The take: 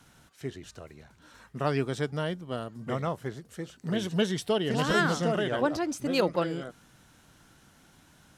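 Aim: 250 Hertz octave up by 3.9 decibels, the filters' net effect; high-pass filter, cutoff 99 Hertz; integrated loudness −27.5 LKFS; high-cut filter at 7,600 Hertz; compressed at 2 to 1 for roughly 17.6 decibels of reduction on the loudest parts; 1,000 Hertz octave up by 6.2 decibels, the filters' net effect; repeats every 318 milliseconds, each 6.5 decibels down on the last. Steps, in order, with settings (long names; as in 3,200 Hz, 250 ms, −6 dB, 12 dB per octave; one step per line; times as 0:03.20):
high-pass filter 99 Hz
low-pass filter 7,600 Hz
parametric band 250 Hz +5 dB
parametric band 1,000 Hz +8 dB
downward compressor 2 to 1, threshold −51 dBFS
repeating echo 318 ms, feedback 47%, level −6.5 dB
level +14.5 dB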